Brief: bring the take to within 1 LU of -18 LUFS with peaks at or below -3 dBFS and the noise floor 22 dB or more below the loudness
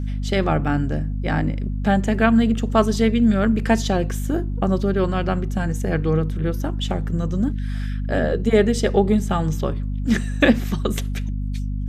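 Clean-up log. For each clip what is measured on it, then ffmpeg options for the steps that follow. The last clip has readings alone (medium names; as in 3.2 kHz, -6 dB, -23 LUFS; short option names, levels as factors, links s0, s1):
hum 50 Hz; highest harmonic 250 Hz; hum level -22 dBFS; loudness -21.0 LUFS; peak level -1.5 dBFS; loudness target -18.0 LUFS
-> -af "bandreject=f=50:t=h:w=4,bandreject=f=100:t=h:w=4,bandreject=f=150:t=h:w=4,bandreject=f=200:t=h:w=4,bandreject=f=250:t=h:w=4"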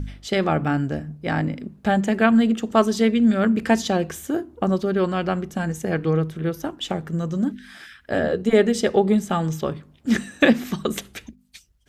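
hum not found; loudness -22.0 LUFS; peak level -2.0 dBFS; loudness target -18.0 LUFS
-> -af "volume=1.58,alimiter=limit=0.708:level=0:latency=1"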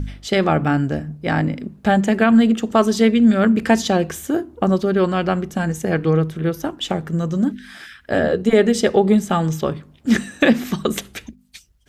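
loudness -18.5 LUFS; peak level -3.0 dBFS; noise floor -51 dBFS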